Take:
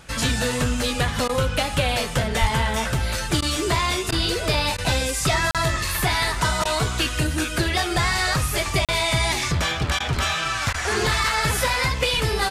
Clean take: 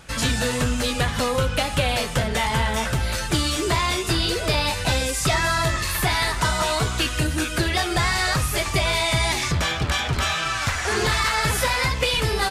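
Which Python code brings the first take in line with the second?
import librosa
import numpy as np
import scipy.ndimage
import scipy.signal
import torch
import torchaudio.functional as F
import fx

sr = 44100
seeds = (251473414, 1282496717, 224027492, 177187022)

y = fx.fix_deplosive(x, sr, at_s=(2.4,))
y = fx.fix_interpolate(y, sr, at_s=(5.51, 8.85), length_ms=37.0)
y = fx.fix_interpolate(y, sr, at_s=(1.28, 3.41, 4.11, 4.77, 6.64, 9.99, 10.73), length_ms=11.0)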